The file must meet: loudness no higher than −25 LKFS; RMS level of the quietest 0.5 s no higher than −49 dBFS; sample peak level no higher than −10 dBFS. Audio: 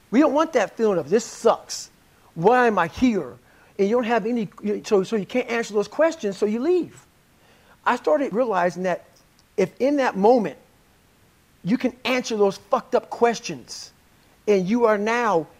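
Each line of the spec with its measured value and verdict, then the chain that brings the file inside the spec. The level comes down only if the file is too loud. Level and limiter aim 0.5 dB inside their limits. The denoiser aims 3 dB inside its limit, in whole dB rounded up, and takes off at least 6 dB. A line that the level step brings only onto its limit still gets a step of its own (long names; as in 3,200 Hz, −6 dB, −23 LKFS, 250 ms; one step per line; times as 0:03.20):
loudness −22.0 LKFS: out of spec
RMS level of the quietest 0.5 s −57 dBFS: in spec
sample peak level −5.0 dBFS: out of spec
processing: level −3.5 dB
brickwall limiter −10.5 dBFS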